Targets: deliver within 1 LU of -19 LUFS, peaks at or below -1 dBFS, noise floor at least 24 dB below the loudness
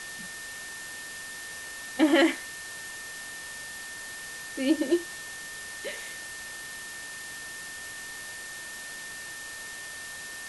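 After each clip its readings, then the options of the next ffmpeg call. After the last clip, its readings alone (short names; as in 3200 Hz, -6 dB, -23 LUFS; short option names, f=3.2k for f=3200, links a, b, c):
steady tone 1800 Hz; tone level -40 dBFS; noise floor -41 dBFS; noise floor target -57 dBFS; loudness -32.5 LUFS; peak -11.0 dBFS; loudness target -19.0 LUFS
-> -af "bandreject=f=1.8k:w=30"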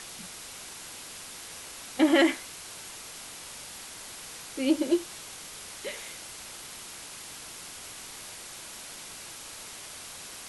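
steady tone none; noise floor -44 dBFS; noise floor target -58 dBFS
-> -af "afftdn=nr=14:nf=-44"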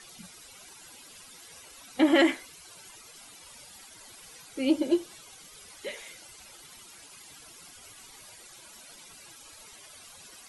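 noise floor -51 dBFS; noise floor target -52 dBFS
-> -af "afftdn=nr=6:nf=-51"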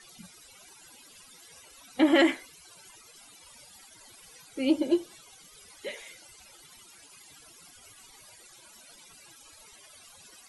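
noise floor -54 dBFS; loudness -27.5 LUFS; peak -11.5 dBFS; loudness target -19.0 LUFS
-> -af "volume=8.5dB"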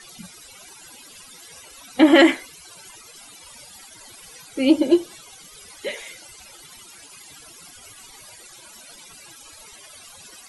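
loudness -19.0 LUFS; peak -3.0 dBFS; noise floor -46 dBFS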